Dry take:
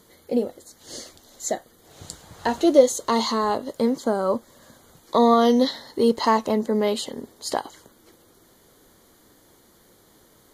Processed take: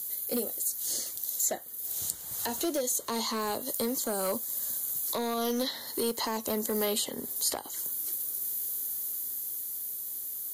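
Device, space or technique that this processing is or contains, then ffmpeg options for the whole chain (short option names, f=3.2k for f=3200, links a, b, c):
FM broadcast chain: -filter_complex "[0:a]highpass=46,dynaudnorm=f=200:g=17:m=4dB,acrossover=split=310|740|2800[a][b][c][d];[a]acompressor=threshold=-25dB:ratio=4[e];[b]acompressor=threshold=-20dB:ratio=4[f];[c]acompressor=threshold=-29dB:ratio=4[g];[d]acompressor=threshold=-47dB:ratio=4[h];[e][f][g][h]amix=inputs=4:normalize=0,aemphasis=mode=production:type=75fm,alimiter=limit=-14.5dB:level=0:latency=1:release=240,asoftclip=type=hard:threshold=-18.5dB,lowpass=f=15k:w=0.5412,lowpass=f=15k:w=1.3066,aemphasis=mode=production:type=75fm,volume=-6dB"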